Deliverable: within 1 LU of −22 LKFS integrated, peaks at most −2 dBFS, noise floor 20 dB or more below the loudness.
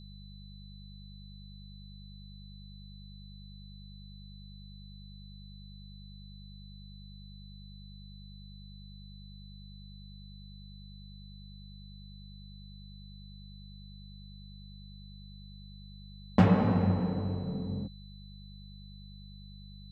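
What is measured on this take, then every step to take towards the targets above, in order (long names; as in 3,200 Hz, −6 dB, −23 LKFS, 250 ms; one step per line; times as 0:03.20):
mains hum 50 Hz; hum harmonics up to 200 Hz; level of the hum −46 dBFS; interfering tone 4,000 Hz; level of the tone −56 dBFS; integrated loudness −29.0 LKFS; sample peak −10.0 dBFS; target loudness −22.0 LKFS
→ hum removal 50 Hz, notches 4
notch filter 4,000 Hz, Q 30
level +7 dB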